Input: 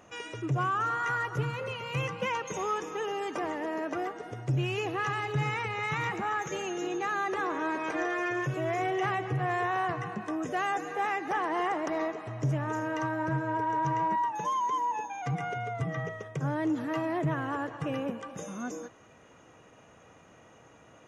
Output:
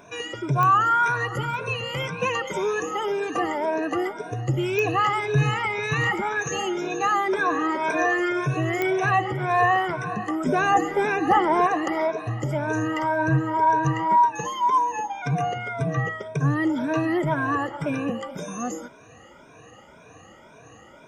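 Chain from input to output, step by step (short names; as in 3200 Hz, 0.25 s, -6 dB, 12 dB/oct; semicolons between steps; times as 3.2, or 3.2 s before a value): moving spectral ripple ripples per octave 1.6, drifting +1.9 Hz, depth 19 dB; 10.46–11.67 low shelf 450 Hz +10.5 dB; pops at 0.63/4.79/8.82, -16 dBFS; gain +4 dB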